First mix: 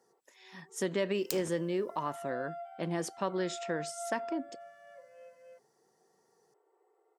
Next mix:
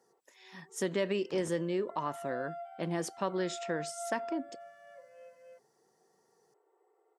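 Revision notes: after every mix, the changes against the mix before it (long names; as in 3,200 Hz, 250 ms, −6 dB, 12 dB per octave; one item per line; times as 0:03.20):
second sound: add low-pass filter 1,300 Hz 12 dB per octave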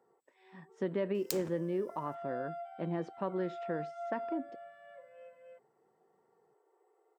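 speech: add head-to-tape spacing loss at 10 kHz 42 dB
second sound: remove low-pass filter 1,300 Hz 12 dB per octave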